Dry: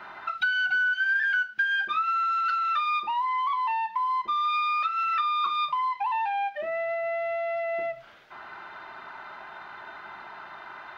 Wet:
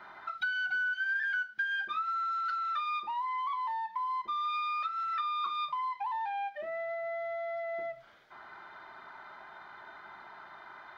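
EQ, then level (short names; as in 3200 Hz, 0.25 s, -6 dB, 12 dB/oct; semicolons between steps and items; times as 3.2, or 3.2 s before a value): notch 2700 Hz, Q 6.3; -7.0 dB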